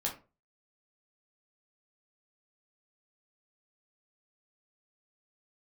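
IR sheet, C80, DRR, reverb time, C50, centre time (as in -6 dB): 16.0 dB, -2.5 dB, 0.35 s, 10.0 dB, 20 ms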